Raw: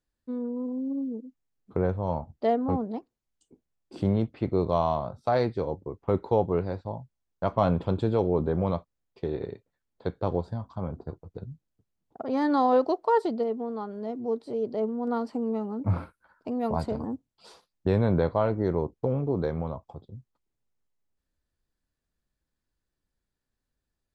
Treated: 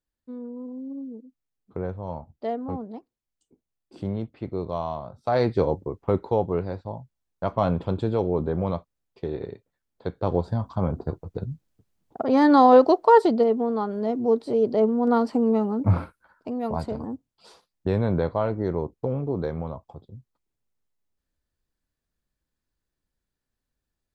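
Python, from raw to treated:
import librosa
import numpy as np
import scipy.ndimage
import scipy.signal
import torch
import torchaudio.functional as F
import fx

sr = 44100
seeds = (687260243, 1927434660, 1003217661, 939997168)

y = fx.gain(x, sr, db=fx.line((5.09, -4.5), (5.6, 8.0), (6.31, 0.5), (10.1, 0.5), (10.61, 8.0), (15.62, 8.0), (16.61, 0.0)))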